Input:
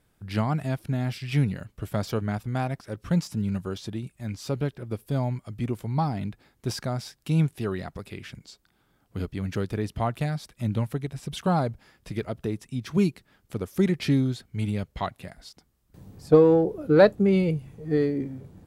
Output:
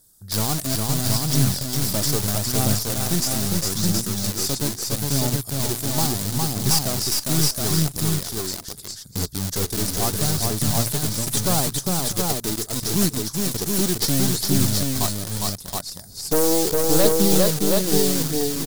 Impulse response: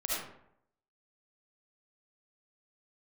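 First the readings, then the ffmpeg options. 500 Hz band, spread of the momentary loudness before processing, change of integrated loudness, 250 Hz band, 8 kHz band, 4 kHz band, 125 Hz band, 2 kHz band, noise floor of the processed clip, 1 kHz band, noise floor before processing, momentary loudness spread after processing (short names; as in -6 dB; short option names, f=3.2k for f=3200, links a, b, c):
+0.5 dB, 15 LU, +5.5 dB, +2.5 dB, +26.0 dB, +16.5 dB, +3.5 dB, +3.5 dB, -39 dBFS, +3.0 dB, -68 dBFS, 7 LU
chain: -filter_complex "[0:a]equalizer=f=2.4k:w=2.7:g=-14,bandreject=f=60:t=h:w=6,bandreject=f=120:t=h:w=6,asplit=2[a][b];[b]acrusher=bits=4:mix=0:aa=0.000001,volume=-4dB[c];[a][c]amix=inputs=2:normalize=0,aexciter=amount=11.5:drive=3.3:freq=3.9k,aeval=exprs='(tanh(6.31*val(0)+0.5)-tanh(0.5))/6.31':c=same,asplit=2[d][e];[e]aecho=0:1:408|445|646|722:0.708|0.119|0.106|0.668[f];[d][f]amix=inputs=2:normalize=0,aphaser=in_gain=1:out_gain=1:delay=3.5:decay=0.26:speed=0.76:type=triangular"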